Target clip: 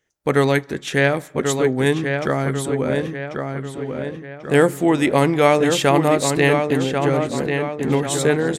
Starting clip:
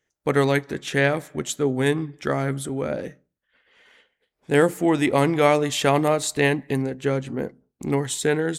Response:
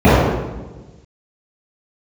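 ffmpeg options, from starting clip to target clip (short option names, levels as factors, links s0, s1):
-filter_complex "[0:a]asplit=2[s0][s1];[s1]adelay=1090,lowpass=f=3600:p=1,volume=0.531,asplit=2[s2][s3];[s3]adelay=1090,lowpass=f=3600:p=1,volume=0.48,asplit=2[s4][s5];[s5]adelay=1090,lowpass=f=3600:p=1,volume=0.48,asplit=2[s6][s7];[s7]adelay=1090,lowpass=f=3600:p=1,volume=0.48,asplit=2[s8][s9];[s9]adelay=1090,lowpass=f=3600:p=1,volume=0.48,asplit=2[s10][s11];[s11]adelay=1090,lowpass=f=3600:p=1,volume=0.48[s12];[s0][s2][s4][s6][s8][s10][s12]amix=inputs=7:normalize=0,volume=1.41"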